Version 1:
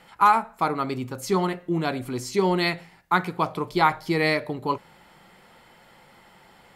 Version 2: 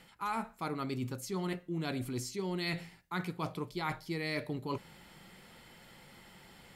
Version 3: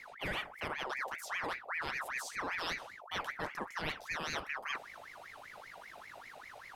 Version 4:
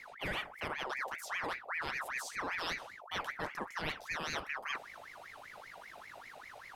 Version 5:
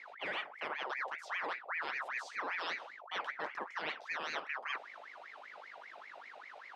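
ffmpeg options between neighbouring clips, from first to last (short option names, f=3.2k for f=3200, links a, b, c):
-af "equalizer=f=870:w=0.58:g=-9,areverse,acompressor=threshold=-35dB:ratio=6,areverse,volume=1.5dB"
-af "aeval=exprs='val(0)+0.00398*(sin(2*PI*50*n/s)+sin(2*PI*2*50*n/s)/2+sin(2*PI*3*50*n/s)/3+sin(2*PI*4*50*n/s)/4+sin(2*PI*5*50*n/s)/5)':c=same,aeval=exprs='val(0)*sin(2*PI*1400*n/s+1400*0.55/5.1*sin(2*PI*5.1*n/s))':c=same"
-af anull
-af "highpass=380,lowpass=3.8k"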